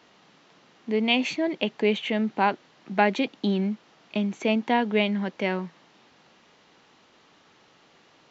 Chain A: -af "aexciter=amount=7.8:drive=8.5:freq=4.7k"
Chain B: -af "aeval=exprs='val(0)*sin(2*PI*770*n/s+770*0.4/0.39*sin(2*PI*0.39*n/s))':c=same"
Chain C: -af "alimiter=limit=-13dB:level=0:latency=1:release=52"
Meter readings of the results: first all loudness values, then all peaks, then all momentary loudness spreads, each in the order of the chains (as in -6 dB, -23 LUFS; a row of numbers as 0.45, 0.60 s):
-25.0, -28.5, -27.5 LUFS; -6.0, -6.0, -13.0 dBFS; 11, 9, 9 LU